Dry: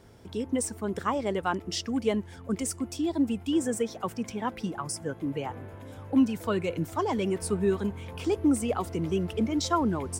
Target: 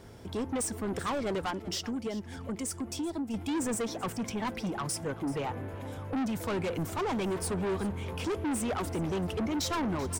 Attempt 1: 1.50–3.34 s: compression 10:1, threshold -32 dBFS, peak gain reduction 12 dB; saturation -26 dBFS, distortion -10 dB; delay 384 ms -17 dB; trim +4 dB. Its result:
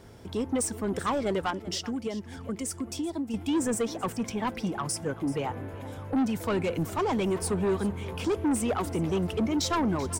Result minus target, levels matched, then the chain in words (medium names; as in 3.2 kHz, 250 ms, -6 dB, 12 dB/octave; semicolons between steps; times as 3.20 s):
saturation: distortion -4 dB
1.50–3.34 s: compression 10:1, threshold -32 dBFS, peak gain reduction 12 dB; saturation -32.5 dBFS, distortion -5 dB; delay 384 ms -17 dB; trim +4 dB